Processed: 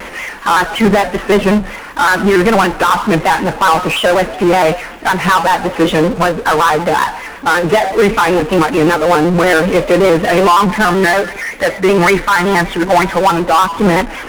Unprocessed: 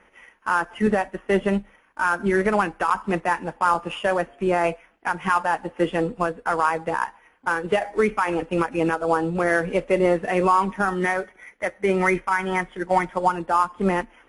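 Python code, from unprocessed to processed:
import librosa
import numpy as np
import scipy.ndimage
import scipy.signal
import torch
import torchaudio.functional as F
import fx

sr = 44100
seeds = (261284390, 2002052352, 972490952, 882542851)

y = fx.power_curve(x, sr, exponent=0.5)
y = fx.vibrato_shape(y, sr, shape='square', rate_hz=5.3, depth_cents=100.0)
y = F.gain(torch.from_numpy(y), 5.0).numpy()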